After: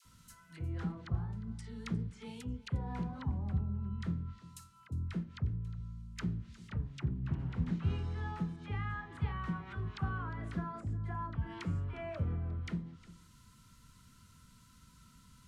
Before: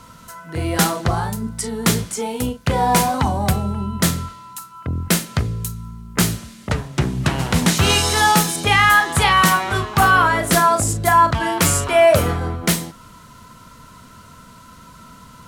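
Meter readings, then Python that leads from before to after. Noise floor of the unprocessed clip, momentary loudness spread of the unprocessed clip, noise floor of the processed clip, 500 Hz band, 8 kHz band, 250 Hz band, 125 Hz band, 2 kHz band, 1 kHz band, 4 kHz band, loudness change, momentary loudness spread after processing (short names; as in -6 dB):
-44 dBFS, 14 LU, -62 dBFS, -29.5 dB, under -35 dB, -17.5 dB, -14.0 dB, -29.5 dB, -30.0 dB, -33.0 dB, -21.5 dB, 9 LU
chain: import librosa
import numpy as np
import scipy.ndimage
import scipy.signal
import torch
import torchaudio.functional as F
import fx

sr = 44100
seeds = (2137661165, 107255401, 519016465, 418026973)

p1 = fx.tone_stack(x, sr, knobs='6-0-2')
p2 = fx.env_lowpass_down(p1, sr, base_hz=950.0, full_db=-33.5)
p3 = fx.dispersion(p2, sr, late='lows', ms=53.0, hz=790.0)
y = p3 + fx.echo_single(p3, sr, ms=356, db=-18.5, dry=0)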